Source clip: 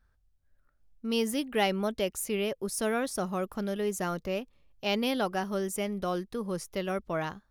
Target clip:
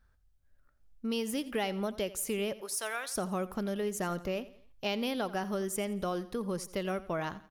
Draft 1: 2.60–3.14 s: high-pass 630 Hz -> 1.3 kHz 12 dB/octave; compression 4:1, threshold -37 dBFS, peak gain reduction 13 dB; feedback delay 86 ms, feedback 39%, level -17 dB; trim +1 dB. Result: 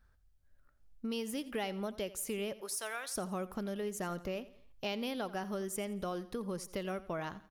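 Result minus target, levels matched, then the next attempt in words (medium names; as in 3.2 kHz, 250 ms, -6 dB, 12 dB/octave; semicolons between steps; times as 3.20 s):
compression: peak gain reduction +4.5 dB
2.60–3.14 s: high-pass 630 Hz -> 1.3 kHz 12 dB/octave; compression 4:1, threshold -31 dBFS, peak gain reduction 8.5 dB; feedback delay 86 ms, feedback 39%, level -17 dB; trim +1 dB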